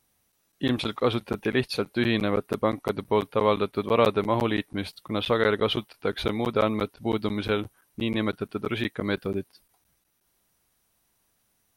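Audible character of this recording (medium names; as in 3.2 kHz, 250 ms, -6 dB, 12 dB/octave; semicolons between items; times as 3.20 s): noise floor -71 dBFS; spectral tilt -4.5 dB/octave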